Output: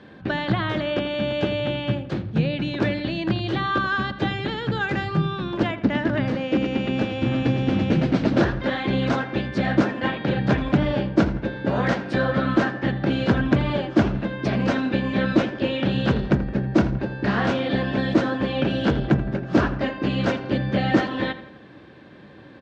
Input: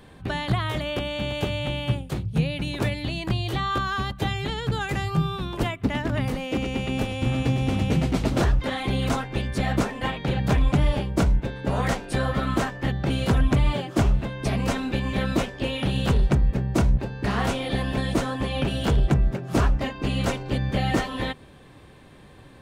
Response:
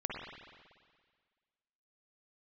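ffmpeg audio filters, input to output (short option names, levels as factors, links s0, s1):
-filter_complex "[0:a]highpass=100,equalizer=f=210:t=q:w=4:g=6,equalizer=f=320:t=q:w=4:g=8,equalizer=f=560:t=q:w=4:g=5,equalizer=f=1600:t=q:w=4:g=7,lowpass=f=5200:w=0.5412,lowpass=f=5200:w=1.3066,asplit=2[s0][s1];[s1]adelay=83,lowpass=f=3300:p=1,volume=0.224,asplit=2[s2][s3];[s3]adelay=83,lowpass=f=3300:p=1,volume=0.53,asplit=2[s4][s5];[s5]adelay=83,lowpass=f=3300:p=1,volume=0.53,asplit=2[s6][s7];[s7]adelay=83,lowpass=f=3300:p=1,volume=0.53,asplit=2[s8][s9];[s9]adelay=83,lowpass=f=3300:p=1,volume=0.53[s10];[s0][s2][s4][s6][s8][s10]amix=inputs=6:normalize=0"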